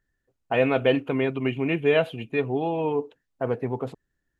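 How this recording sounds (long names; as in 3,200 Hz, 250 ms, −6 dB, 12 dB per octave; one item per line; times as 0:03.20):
background noise floor −79 dBFS
spectral slope −5.0 dB per octave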